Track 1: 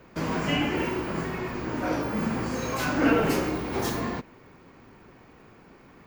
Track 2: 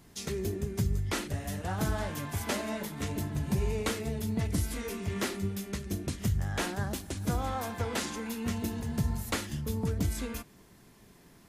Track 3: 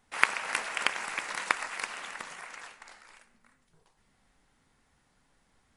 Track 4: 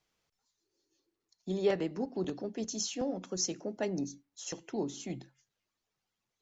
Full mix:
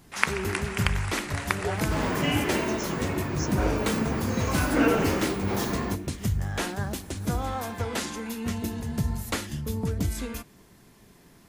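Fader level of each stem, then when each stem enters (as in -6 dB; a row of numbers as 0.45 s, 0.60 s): -0.5 dB, +2.5 dB, -0.5 dB, -4.5 dB; 1.75 s, 0.00 s, 0.00 s, 0.00 s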